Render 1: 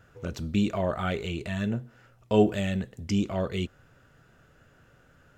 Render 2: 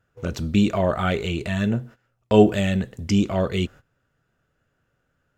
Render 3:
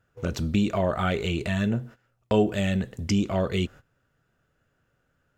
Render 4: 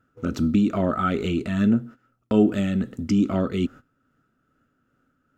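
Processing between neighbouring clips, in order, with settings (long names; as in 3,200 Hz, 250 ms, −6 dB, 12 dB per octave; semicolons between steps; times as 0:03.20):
noise gate −46 dBFS, range −19 dB; level +6.5 dB
downward compressor 2 to 1, threshold −23 dBFS, peak gain reduction 8.5 dB
hollow resonant body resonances 260/1,300 Hz, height 16 dB, ringing for 35 ms; amplitude tremolo 2.4 Hz, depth 32%; level −2.5 dB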